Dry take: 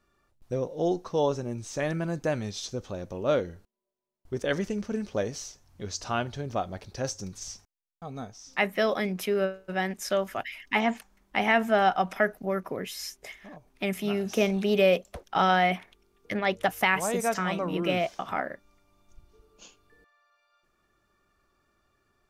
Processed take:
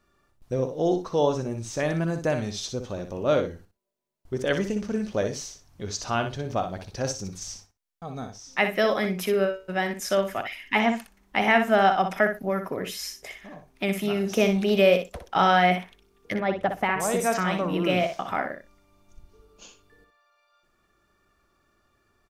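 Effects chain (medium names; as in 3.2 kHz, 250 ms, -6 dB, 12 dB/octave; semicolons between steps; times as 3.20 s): 16.36–17.00 s: low-pass 1 kHz 6 dB/octave; on a send: feedback delay 61 ms, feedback 15%, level -8 dB; on the sum: trim +2.5 dB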